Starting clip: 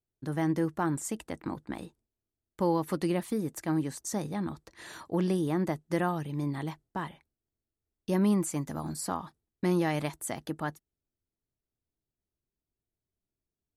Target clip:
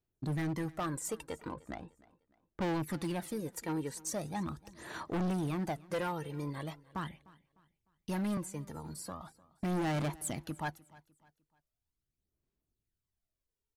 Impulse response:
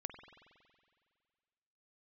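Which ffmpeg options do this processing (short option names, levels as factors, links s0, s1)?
-filter_complex "[0:a]asettb=1/sr,asplit=3[s0][s1][s2];[s0]atrim=end=8.374[s3];[s1]atrim=start=8.37:end=9.21,asetpts=PTS-STARTPTS,afade=t=in:d=0.004:c=qsin,afade=t=out:st=0.836:d=0.004:c=qsin,acrossover=split=250[s4][s5];[s5]acompressor=threshold=0.00501:ratio=2[s6];[s4][s6]amix=inputs=2:normalize=0[s7];[s2]atrim=start=9.206[s8];[s3][s7]acrossfade=d=0.004:c1=hsin:c2=qsin[s9];[s9][s8]acrossfade=d=0.004:c1=qsin:c2=hsin,aphaser=in_gain=1:out_gain=1:delay=2.2:decay=0.64:speed=0.4:type=sinusoidal,asettb=1/sr,asplit=3[s10][s11][s12];[s10]atrim=end=1.494[s13];[s11]atrim=start=1.49:end=2.67,asetpts=PTS-STARTPTS,afade=t=in:d=0.004:c=qsin,afade=t=out:st=1.176:d=0.004:c=qsin,adynamicsmooth=sensitivity=5:basefreq=1900[s14];[s12]atrim=start=2.666[s15];[s13][s14]acrossfade=d=0.004:c1=hsin:c2=qsin[s16];[s16][s15]acrossfade=d=0.004:c1=qsin:c2=hsin,asoftclip=type=hard:threshold=0.0473,aecho=1:1:302|604|906:0.0794|0.0294|0.0109,volume=0.631"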